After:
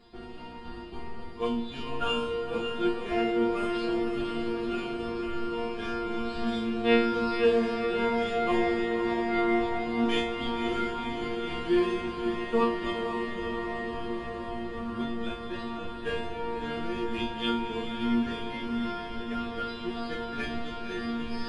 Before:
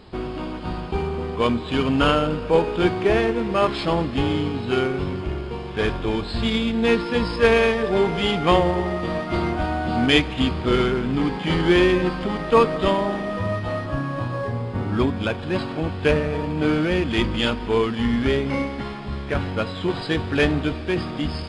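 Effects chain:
sub-octave generator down 1 octave, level −1 dB
reversed playback
upward compression, threshold −20 dBFS
reversed playback
resonators tuned to a chord A#3 fifth, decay 0.42 s
feedback delay with all-pass diffusion 533 ms, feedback 76%, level −7 dB
level +4.5 dB

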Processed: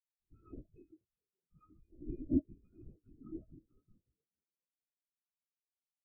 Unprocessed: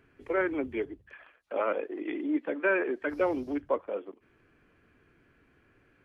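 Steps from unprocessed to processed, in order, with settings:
lower of the sound and its delayed copy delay 0.77 ms
0:01.89–0:03.92: low-shelf EQ 200 Hz +7 dB
brickwall limiter −25 dBFS, peak gain reduction 9.5 dB
resonances in every octave D#, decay 0.17 s
pitch vibrato 0.35 Hz 35 cents
linear-prediction vocoder at 8 kHz whisper
echo with shifted repeats 425 ms, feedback 52%, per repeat +63 Hz, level −15.5 dB
every bin expanded away from the loudest bin 2.5 to 1
level +6.5 dB

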